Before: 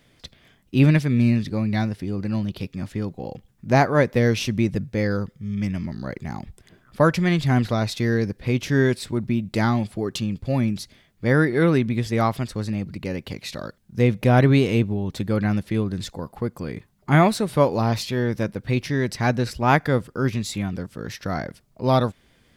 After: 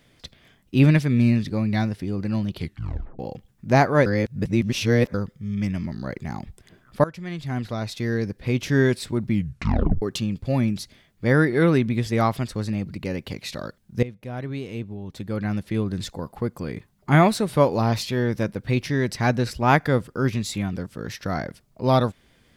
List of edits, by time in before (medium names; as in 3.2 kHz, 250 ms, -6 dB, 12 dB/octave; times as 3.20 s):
2.56 s: tape stop 0.63 s
4.06–5.14 s: reverse
7.04–8.74 s: fade in, from -19 dB
9.28 s: tape stop 0.74 s
14.03–15.96 s: fade in quadratic, from -18 dB